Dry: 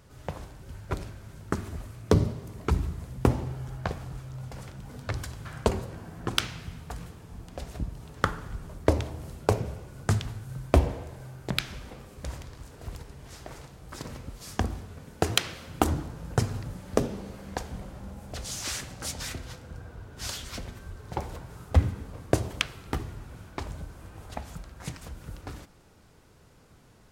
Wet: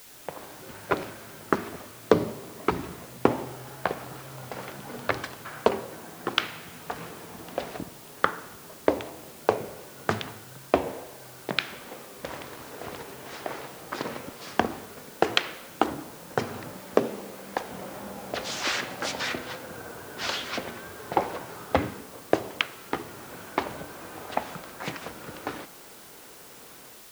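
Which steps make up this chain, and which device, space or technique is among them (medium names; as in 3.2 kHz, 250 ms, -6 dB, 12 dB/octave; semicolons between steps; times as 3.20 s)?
dictaphone (band-pass 310–3300 Hz; level rider gain up to 12.5 dB; wow and flutter; white noise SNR 17 dB); trim -1.5 dB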